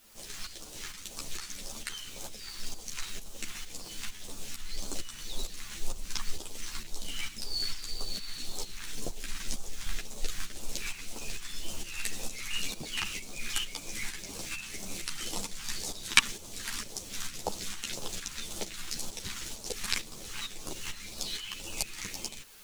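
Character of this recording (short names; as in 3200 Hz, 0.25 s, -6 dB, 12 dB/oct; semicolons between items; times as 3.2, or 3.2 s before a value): phasing stages 2, 1.9 Hz, lowest notch 520–1800 Hz; a quantiser's noise floor 10-bit, dither triangular; tremolo saw up 2.2 Hz, depth 65%; a shimmering, thickened sound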